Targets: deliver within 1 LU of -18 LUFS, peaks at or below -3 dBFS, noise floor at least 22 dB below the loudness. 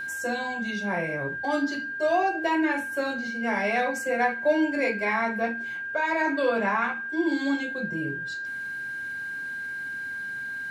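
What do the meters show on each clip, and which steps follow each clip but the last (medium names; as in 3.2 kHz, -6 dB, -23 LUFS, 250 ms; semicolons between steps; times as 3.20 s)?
steady tone 1.6 kHz; tone level -31 dBFS; loudness -27.0 LUFS; peak level -12.0 dBFS; loudness target -18.0 LUFS
-> band-stop 1.6 kHz, Q 30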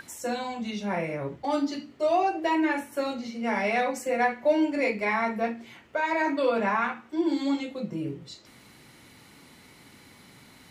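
steady tone not found; loudness -27.5 LUFS; peak level -13.0 dBFS; loudness target -18.0 LUFS
-> trim +9.5 dB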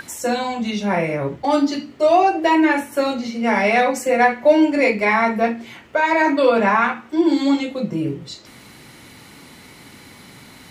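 loudness -18.0 LUFS; peak level -3.5 dBFS; noise floor -44 dBFS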